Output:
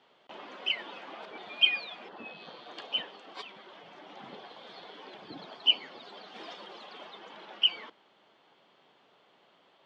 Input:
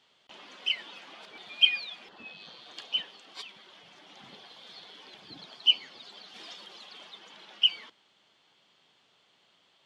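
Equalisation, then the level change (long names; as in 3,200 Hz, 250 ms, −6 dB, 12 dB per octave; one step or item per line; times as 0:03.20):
resonant band-pass 540 Hz, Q 0.57
+8.5 dB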